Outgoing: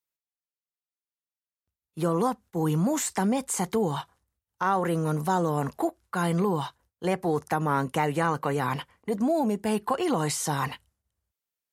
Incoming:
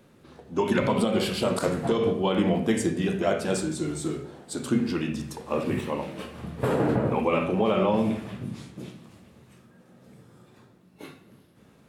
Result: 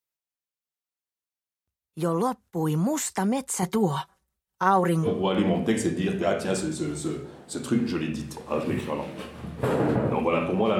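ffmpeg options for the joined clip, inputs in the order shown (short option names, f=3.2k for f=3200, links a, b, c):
-filter_complex "[0:a]asettb=1/sr,asplit=3[a][b][c];[a]atrim=end=3.624[d];[b]atrim=start=3.62:end=5.08,asetpts=PTS-STARTPTS,afade=t=in:d=0.004:c=qsin,afade=t=out:st=1.456:d=0.004:c=qsin,aecho=1:1:5.3:0.87,atrim=end_sample=64386[e];[c]atrim=start=5.076[f];[d][e]acrossfade=d=0.004:c1=hsin:c2=qsin[g];[g][f]acrossfade=d=0.004:c1=qsin:c2=hsin,apad=whole_dur=10.79,atrim=end=10.79,atrim=end=5.08,asetpts=PTS-STARTPTS[h];[1:a]atrim=start=2.02:end=7.79,asetpts=PTS-STARTPTS[i];[h][i]acrossfade=d=0.06:c1=tri:c2=tri"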